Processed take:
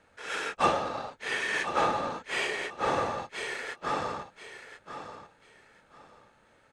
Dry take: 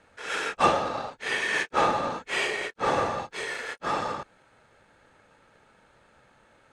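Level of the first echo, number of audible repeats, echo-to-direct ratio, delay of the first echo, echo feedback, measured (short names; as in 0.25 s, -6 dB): -10.5 dB, 2, -10.5 dB, 1.035 s, 23%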